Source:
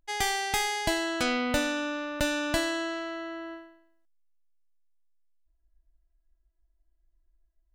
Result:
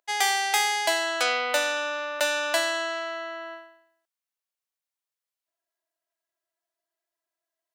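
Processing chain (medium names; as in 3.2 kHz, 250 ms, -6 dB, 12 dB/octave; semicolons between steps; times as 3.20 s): high-pass 500 Hz 24 dB/octave; trim +5 dB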